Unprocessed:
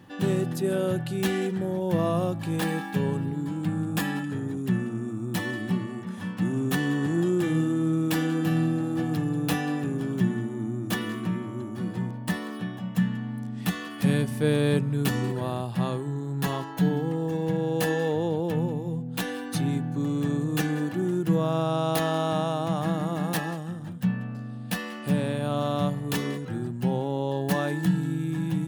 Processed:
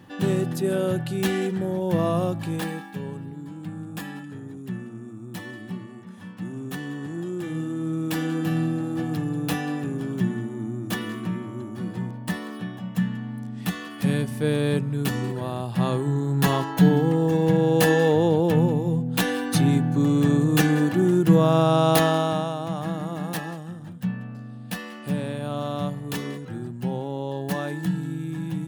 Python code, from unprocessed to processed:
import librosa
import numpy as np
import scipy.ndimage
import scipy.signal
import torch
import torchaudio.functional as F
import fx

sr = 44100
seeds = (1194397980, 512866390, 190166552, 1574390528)

y = fx.gain(x, sr, db=fx.line((2.41, 2.0), (2.93, -7.0), (7.25, -7.0), (8.32, 0.0), (15.53, 0.0), (16.08, 7.0), (21.99, 7.0), (22.56, -2.0)))